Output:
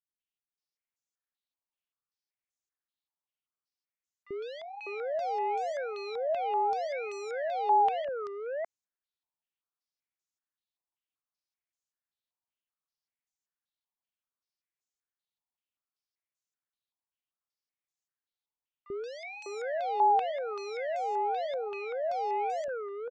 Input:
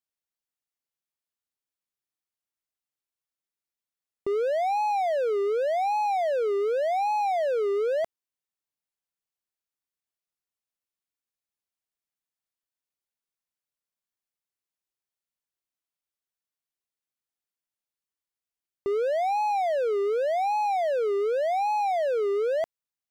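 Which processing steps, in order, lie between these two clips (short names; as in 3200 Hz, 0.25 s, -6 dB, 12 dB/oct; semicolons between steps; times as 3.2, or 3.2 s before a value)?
three bands offset in time highs, lows, mids 40/600 ms, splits 440/1800 Hz; stepped low-pass 5.2 Hz 940–6800 Hz; gain -6.5 dB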